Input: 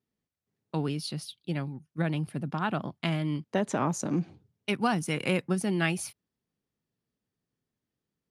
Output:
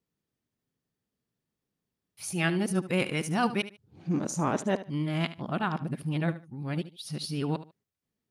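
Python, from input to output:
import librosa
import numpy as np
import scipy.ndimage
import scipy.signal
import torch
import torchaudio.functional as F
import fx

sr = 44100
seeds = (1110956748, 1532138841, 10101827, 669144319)

y = np.flip(x).copy()
y = fx.echo_feedback(y, sr, ms=74, feedback_pct=23, wet_db=-14.5)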